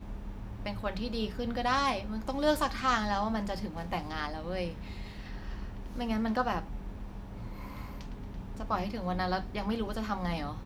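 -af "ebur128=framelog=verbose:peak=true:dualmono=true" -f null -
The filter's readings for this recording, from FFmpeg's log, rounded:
Integrated loudness:
  I:         -30.8 LUFS
  Threshold: -41.1 LUFS
Loudness range:
  LRA:         5.8 LU
  Threshold: -51.1 LUFS
  LRA low:   -34.0 LUFS
  LRA high:  -28.2 LUFS
True peak:
  Peak:      -15.6 dBFS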